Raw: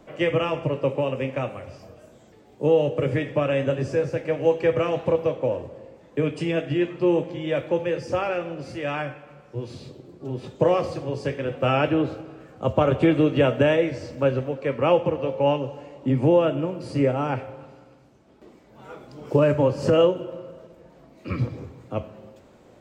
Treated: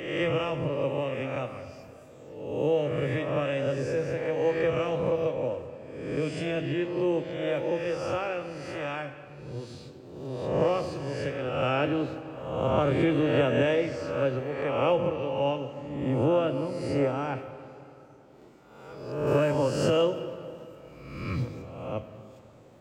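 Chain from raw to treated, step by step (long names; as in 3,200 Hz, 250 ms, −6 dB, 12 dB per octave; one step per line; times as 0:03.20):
peak hold with a rise ahead of every peak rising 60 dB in 1.05 s
high-shelf EQ 4,300 Hz +4 dB, from 0:19.27 +10.5 dB, from 0:21.62 +3 dB
convolution reverb RT60 3.5 s, pre-delay 105 ms, DRR 14.5 dB
level −7.5 dB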